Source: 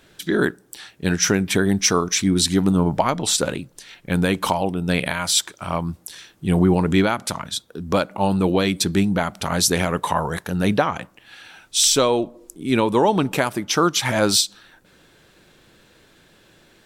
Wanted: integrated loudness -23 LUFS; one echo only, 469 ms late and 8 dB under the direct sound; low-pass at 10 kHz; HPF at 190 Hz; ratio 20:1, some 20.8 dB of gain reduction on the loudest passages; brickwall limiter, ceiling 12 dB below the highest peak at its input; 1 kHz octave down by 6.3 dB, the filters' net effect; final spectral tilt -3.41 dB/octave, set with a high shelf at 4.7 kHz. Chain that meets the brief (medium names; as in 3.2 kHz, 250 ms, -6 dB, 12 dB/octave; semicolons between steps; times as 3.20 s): high-pass 190 Hz; low-pass 10 kHz; peaking EQ 1 kHz -8.5 dB; treble shelf 4.7 kHz +6.5 dB; compression 20:1, threshold -31 dBFS; peak limiter -24 dBFS; delay 469 ms -8 dB; trim +13.5 dB